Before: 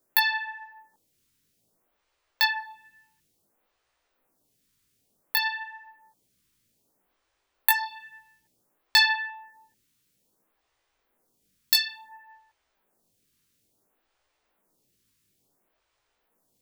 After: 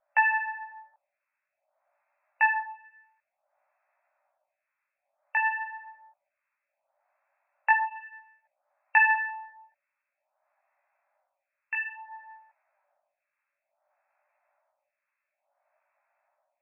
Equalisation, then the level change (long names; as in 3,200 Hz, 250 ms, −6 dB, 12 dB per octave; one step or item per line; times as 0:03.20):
linear-phase brick-wall band-pass 550–2,700 Hz
spectral tilt −3.5 dB per octave
parametric band 1,100 Hz −3 dB 0.32 octaves
+4.5 dB